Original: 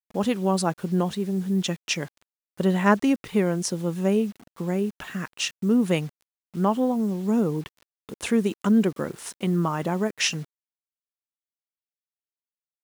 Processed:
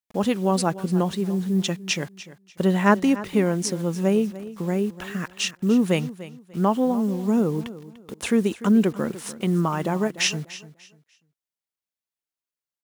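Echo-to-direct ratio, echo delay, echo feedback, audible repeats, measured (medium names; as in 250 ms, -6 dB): -15.5 dB, 295 ms, 26%, 2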